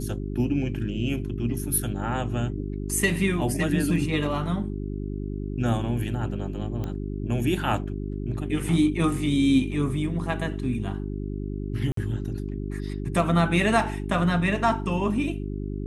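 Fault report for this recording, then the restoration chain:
hum 50 Hz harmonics 8 -31 dBFS
6.84 pop -20 dBFS
11.92–11.97 gap 53 ms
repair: de-click; de-hum 50 Hz, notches 8; interpolate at 11.92, 53 ms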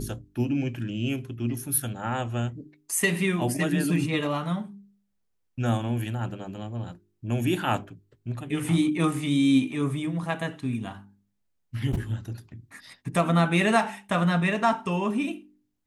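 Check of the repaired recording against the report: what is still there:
6.84 pop

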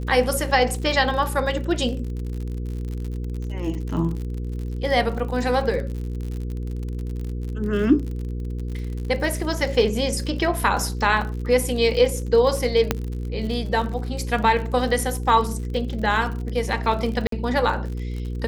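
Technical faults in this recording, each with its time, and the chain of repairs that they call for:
crackle 57/s -30 dBFS
hum 60 Hz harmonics 8 -28 dBFS
12.91 pop -4 dBFS
17.27–17.32 gap 53 ms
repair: de-click; de-hum 60 Hz, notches 8; interpolate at 17.27, 53 ms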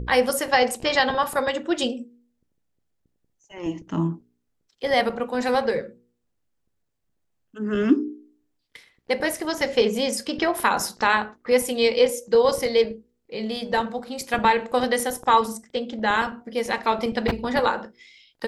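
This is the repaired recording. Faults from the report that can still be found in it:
none

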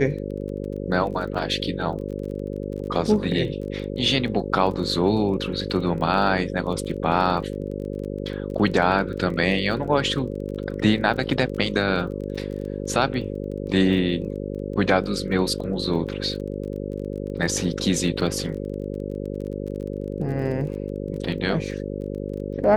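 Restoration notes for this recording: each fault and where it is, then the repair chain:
buzz 50 Hz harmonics 11 -30 dBFS
crackle 22/s -33 dBFS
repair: de-click; de-hum 50 Hz, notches 11

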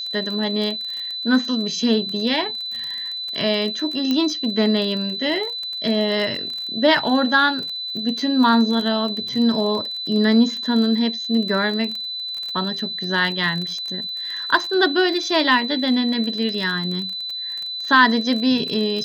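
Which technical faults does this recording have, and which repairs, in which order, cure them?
crackle 29/s -26 dBFS
tone 4000 Hz -26 dBFS
4.11 pop -9 dBFS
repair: de-click; notch 4000 Hz, Q 30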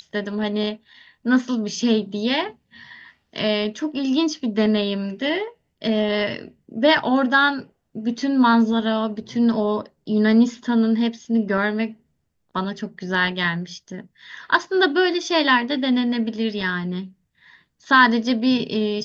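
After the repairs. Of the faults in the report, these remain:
none

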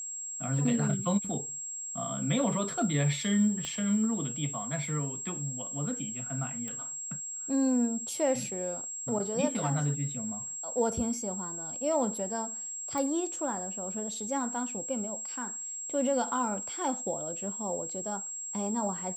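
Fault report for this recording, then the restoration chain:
tone 7600 Hz -36 dBFS
3.65 pop -21 dBFS
6.68 pop -24 dBFS
12.98 pop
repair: de-click; notch 7600 Hz, Q 30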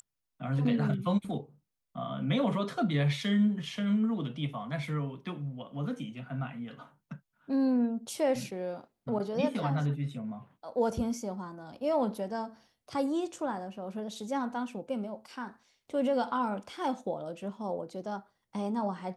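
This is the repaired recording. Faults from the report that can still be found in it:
3.65 pop

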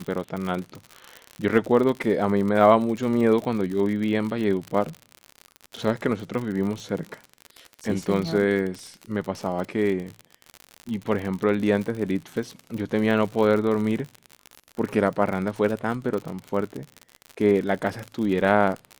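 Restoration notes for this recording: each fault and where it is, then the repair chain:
crackle 60/s -28 dBFS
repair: de-click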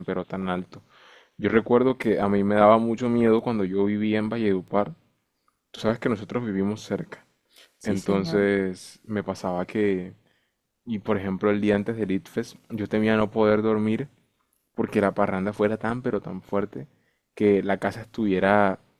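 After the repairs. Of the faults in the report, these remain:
none

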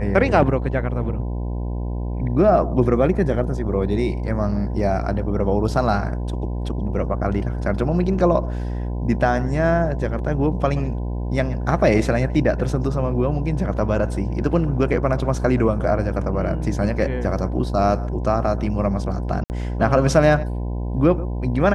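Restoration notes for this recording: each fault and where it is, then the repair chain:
buzz 60 Hz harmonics 17 -25 dBFS
19.44–19.5 gap 59 ms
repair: de-hum 60 Hz, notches 17; interpolate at 19.44, 59 ms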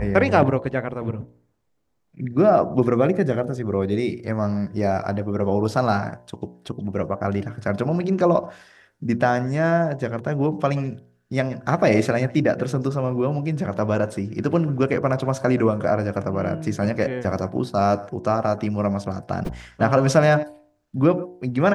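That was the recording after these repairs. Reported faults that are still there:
none

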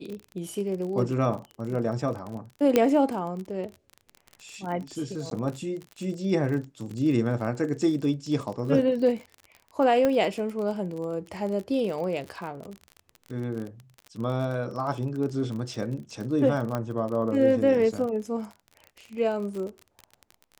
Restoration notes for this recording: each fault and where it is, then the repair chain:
crackle 33/s -33 dBFS
2.76 pop -7 dBFS
5.3–5.31 gap 12 ms
10.05 pop -12 dBFS
16.75 pop -16 dBFS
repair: de-click; interpolate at 5.3, 12 ms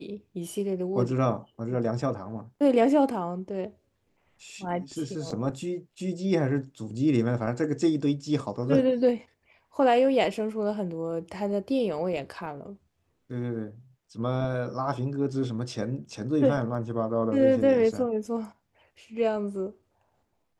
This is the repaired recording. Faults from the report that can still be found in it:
2.76 pop
16.75 pop

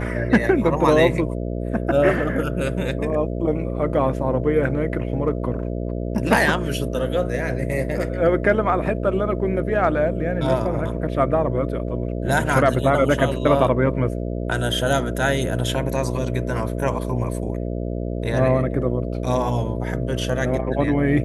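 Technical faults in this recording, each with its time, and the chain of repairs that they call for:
buzz 60 Hz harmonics 11 -26 dBFS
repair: de-hum 60 Hz, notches 11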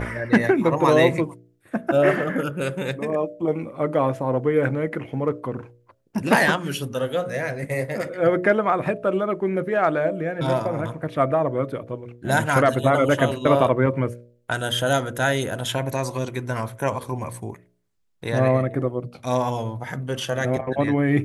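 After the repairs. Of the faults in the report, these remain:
none

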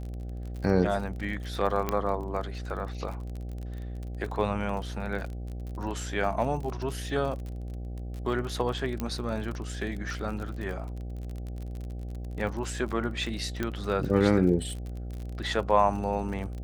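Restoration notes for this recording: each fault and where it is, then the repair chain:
buzz 60 Hz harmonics 13 -36 dBFS
crackle 38/s -35 dBFS
1.89 pop -13 dBFS
9 pop -17 dBFS
13.63 pop -16 dBFS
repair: de-click; de-hum 60 Hz, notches 13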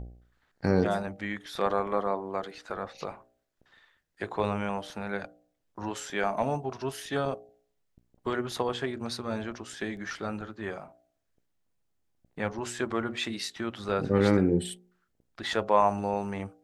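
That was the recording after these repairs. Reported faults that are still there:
none

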